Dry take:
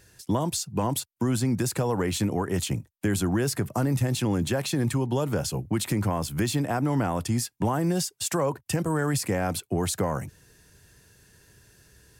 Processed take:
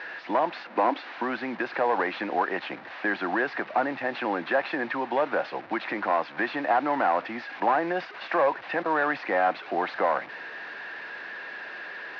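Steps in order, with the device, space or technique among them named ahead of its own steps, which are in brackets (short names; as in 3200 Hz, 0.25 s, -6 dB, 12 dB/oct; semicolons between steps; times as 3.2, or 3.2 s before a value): digital answering machine (BPF 330–3300 Hz; delta modulation 32 kbps, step -40 dBFS; speaker cabinet 390–3300 Hz, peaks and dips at 420 Hz -8 dB, 770 Hz +3 dB, 1700 Hz +5 dB, 3200 Hz -6 dB); 0.65–1.12 resonant low shelf 190 Hz -9 dB, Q 3; gain +7 dB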